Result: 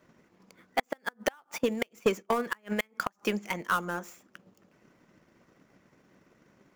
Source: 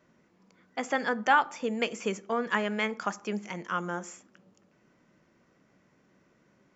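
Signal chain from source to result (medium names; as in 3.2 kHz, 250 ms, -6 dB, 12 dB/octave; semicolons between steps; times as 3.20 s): dead-time distortion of 0.052 ms; 1.58–3.11 s: gate -39 dBFS, range -13 dB; harmonic-percussive split percussive +5 dB; inverted gate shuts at -13 dBFS, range -32 dB; saturation -21 dBFS, distortion -14 dB; transient shaper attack +6 dB, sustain -4 dB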